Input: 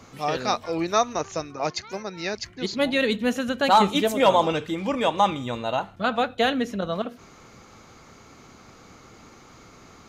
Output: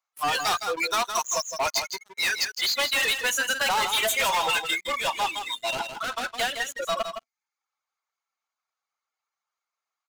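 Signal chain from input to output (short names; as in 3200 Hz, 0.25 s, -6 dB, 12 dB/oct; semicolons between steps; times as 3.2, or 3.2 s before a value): spectral noise reduction 25 dB; HPF 760 Hz 24 dB/oct; reverb removal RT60 0.75 s; dynamic EQ 2600 Hz, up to +3 dB, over -42 dBFS, Q 1.4; limiter -18.5 dBFS, peak gain reduction 11.5 dB; sample leveller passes 5; compressor, threshold -23 dBFS, peak gain reduction 3 dB; 4.83–6.89 rotary speaker horn 6.7 Hz; echo 0.163 s -8 dB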